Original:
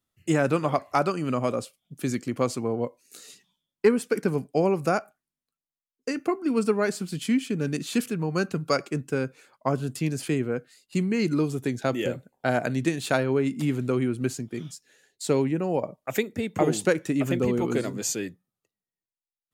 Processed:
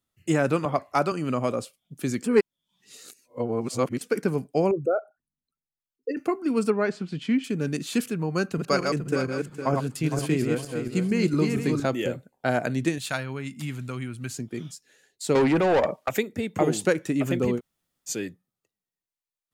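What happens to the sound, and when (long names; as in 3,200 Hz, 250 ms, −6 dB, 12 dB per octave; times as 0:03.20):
0:00.65–0:01.12: multiband upward and downward expander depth 70%
0:02.24–0:04.01: reverse
0:04.71–0:06.17: spectral envelope exaggerated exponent 3
0:06.70–0:07.44: low-pass filter 3,400 Hz
0:08.35–0:11.86: feedback delay that plays each chunk backwards 230 ms, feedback 51%, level −3.5 dB
0:12.98–0:14.34: parametric band 390 Hz −14.5 dB 1.8 octaves
0:15.35–0:16.09: mid-hump overdrive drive 24 dB, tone 4,200 Hz, clips at −12.5 dBFS
0:17.58–0:18.09: fill with room tone, crossfade 0.06 s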